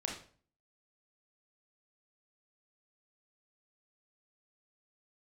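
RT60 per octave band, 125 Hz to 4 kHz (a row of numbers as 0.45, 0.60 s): 0.55, 0.55, 0.50, 0.40, 0.40, 0.35 s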